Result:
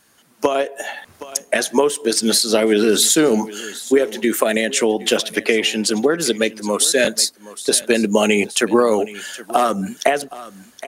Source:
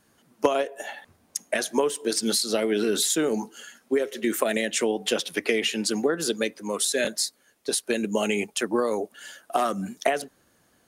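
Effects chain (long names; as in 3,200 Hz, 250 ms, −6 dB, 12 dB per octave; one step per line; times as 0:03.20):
automatic gain control
on a send: single-tap delay 770 ms −19 dB
on the sum: one half of a high-frequency compander encoder only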